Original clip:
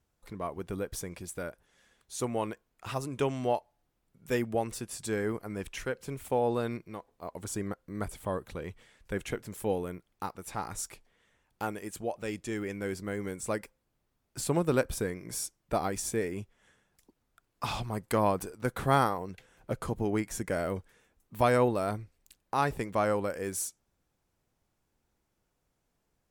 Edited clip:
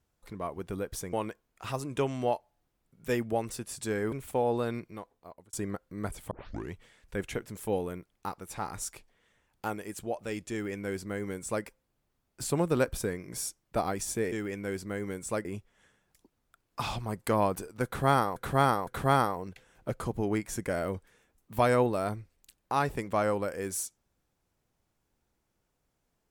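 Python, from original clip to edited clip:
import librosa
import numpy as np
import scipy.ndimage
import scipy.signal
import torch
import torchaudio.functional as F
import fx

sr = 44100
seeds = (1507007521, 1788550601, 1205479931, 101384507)

y = fx.edit(x, sr, fx.cut(start_s=1.13, length_s=1.22),
    fx.cut(start_s=5.34, length_s=0.75),
    fx.fade_out_span(start_s=6.91, length_s=0.59),
    fx.tape_start(start_s=8.28, length_s=0.42),
    fx.duplicate(start_s=12.49, length_s=1.13, to_s=16.29),
    fx.repeat(start_s=18.69, length_s=0.51, count=3), tone=tone)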